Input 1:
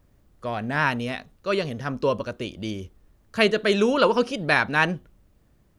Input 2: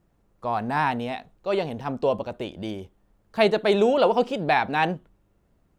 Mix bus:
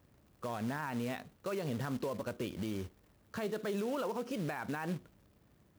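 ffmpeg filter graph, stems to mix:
-filter_complex "[0:a]equalizer=f=8.5k:w=0.45:g=-7.5,acompressor=threshold=-26dB:ratio=8,acrusher=bits=3:mode=log:mix=0:aa=0.000001,volume=-2.5dB[a];[1:a]volume=-15.5dB[b];[a][b]amix=inputs=2:normalize=0,highpass=84,alimiter=level_in=4dB:limit=-24dB:level=0:latency=1:release=77,volume=-4dB"

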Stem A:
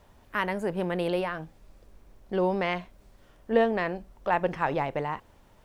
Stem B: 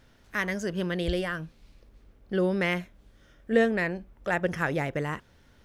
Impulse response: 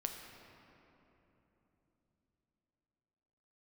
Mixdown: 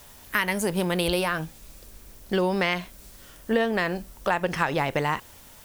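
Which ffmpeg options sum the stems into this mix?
-filter_complex "[0:a]crystalizer=i=8:c=0,volume=2.5dB[a];[1:a]volume=-1.5dB[b];[a][b]amix=inputs=2:normalize=0,acompressor=threshold=-20dB:ratio=6"

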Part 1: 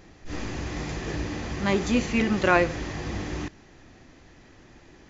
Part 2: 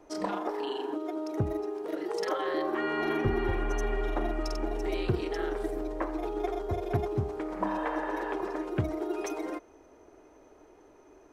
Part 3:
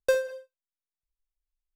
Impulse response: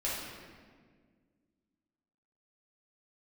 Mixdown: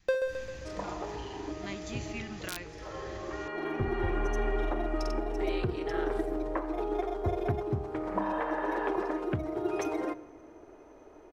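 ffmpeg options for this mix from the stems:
-filter_complex "[0:a]adynamicequalizer=threshold=0.0126:dfrequency=450:dqfactor=2.4:tfrequency=450:tqfactor=2.4:attack=5:release=100:ratio=0.375:range=3:mode=cutabove:tftype=bell,aeval=exprs='(mod(2.51*val(0)+1,2)-1)/2.51':c=same,equalizer=f=450:w=0.37:g=-12,volume=-9.5dB,asplit=2[a][b];[1:a]highshelf=f=4.4k:g=-8,adelay=550,volume=2.5dB,asplit=2[c][d];[d]volume=-21.5dB[e];[2:a]acrossover=split=4500[f][g];[g]acompressor=threshold=-55dB:ratio=4:attack=1:release=60[h];[f][h]amix=inputs=2:normalize=0,volume=-1.5dB,asplit=2[i][j];[j]volume=-7.5dB[k];[b]apad=whole_len=523513[l];[c][l]sidechaincompress=threshold=-48dB:ratio=8:attack=5.8:release=1060[m];[3:a]atrim=start_sample=2205[n];[e][n]afir=irnorm=-1:irlink=0[o];[k]aecho=0:1:132|264|396|528|660|792|924|1056:1|0.53|0.281|0.149|0.0789|0.0418|0.0222|0.0117[p];[a][m][i][o][p]amix=inputs=5:normalize=0,alimiter=limit=-19.5dB:level=0:latency=1:release=446"

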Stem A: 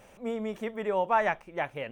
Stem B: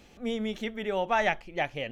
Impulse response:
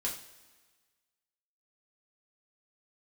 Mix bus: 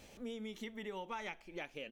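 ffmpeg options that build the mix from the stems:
-filter_complex "[0:a]equalizer=f=1.2k:t=o:w=0.77:g=-9.5,volume=-5.5dB[a];[1:a]acrossover=split=170|3000[b][c][d];[b]acompressor=threshold=-44dB:ratio=6[e];[e][c][d]amix=inputs=3:normalize=0,highshelf=f=3.6k:g=9.5,adelay=0.4,volume=-7dB,asplit=2[f][g];[g]volume=-22dB[h];[2:a]atrim=start_sample=2205[i];[h][i]afir=irnorm=-1:irlink=0[j];[a][f][j]amix=inputs=3:normalize=0,acompressor=threshold=-44dB:ratio=3"

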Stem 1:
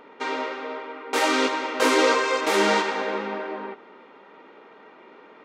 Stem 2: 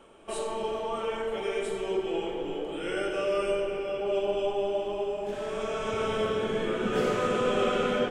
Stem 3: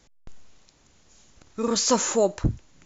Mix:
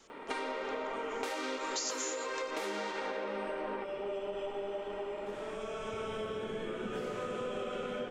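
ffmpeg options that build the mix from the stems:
-filter_complex "[0:a]adelay=100,volume=1.5dB[a];[1:a]volume=-7.5dB[b];[2:a]highpass=f=1.3k:w=0.5412,highpass=f=1.3k:w=1.3066,volume=-0.5dB[c];[a][b]amix=inputs=2:normalize=0,adynamicequalizer=threshold=0.00891:dfrequency=540:dqfactor=7.7:tfrequency=540:tqfactor=7.7:attack=5:release=100:ratio=0.375:range=3.5:mode=boostabove:tftype=bell,acompressor=threshold=-27dB:ratio=6,volume=0dB[d];[c][d]amix=inputs=2:normalize=0,acompressor=threshold=-34dB:ratio=6"

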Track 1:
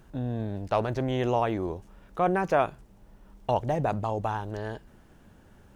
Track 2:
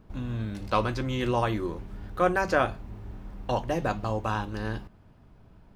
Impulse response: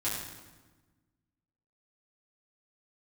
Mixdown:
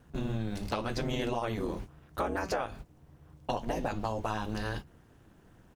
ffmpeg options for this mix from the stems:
-filter_complex "[0:a]aeval=exprs='val(0)*sin(2*PI*110*n/s)':c=same,volume=-1dB,asplit=2[a][b];[1:a]highshelf=f=2.6k:g=9,acompressor=threshold=-27dB:ratio=6,adelay=6.4,volume=-1.5dB[c];[b]apad=whole_len=253972[d];[c][d]sidechaingate=range=-33dB:threshold=-46dB:ratio=16:detection=peak[e];[a][e]amix=inputs=2:normalize=0,acompressor=threshold=-28dB:ratio=6"

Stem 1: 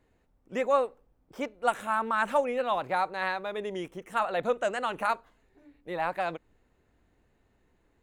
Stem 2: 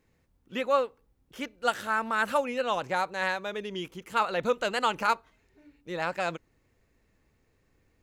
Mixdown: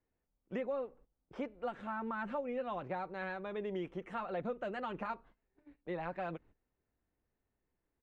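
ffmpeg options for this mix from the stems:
-filter_complex "[0:a]acrossover=split=390[a][b];[b]acompressor=threshold=-41dB:ratio=3[c];[a][c]amix=inputs=2:normalize=0,volume=-1dB,asplit=2[d][e];[1:a]adelay=6.4,volume=-15dB[f];[e]apad=whole_len=354259[g];[f][g]sidechaincompress=threshold=-34dB:ratio=8:attack=16:release=1330[h];[d][h]amix=inputs=2:normalize=0,lowpass=2.8k,agate=range=-16dB:threshold=-58dB:ratio=16:detection=peak,acompressor=threshold=-35dB:ratio=2.5"

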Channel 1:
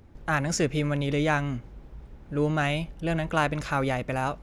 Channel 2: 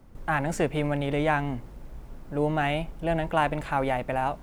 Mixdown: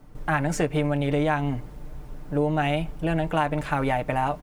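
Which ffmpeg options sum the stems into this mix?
-filter_complex "[0:a]volume=-15dB[a];[1:a]aecho=1:1:6.7:0.6,volume=2dB[b];[a][b]amix=inputs=2:normalize=0,acompressor=threshold=-19dB:ratio=6"

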